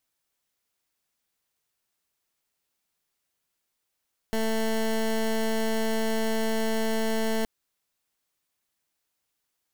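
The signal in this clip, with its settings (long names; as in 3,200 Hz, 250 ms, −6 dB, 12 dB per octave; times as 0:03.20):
pulse wave 222 Hz, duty 18% −25.5 dBFS 3.12 s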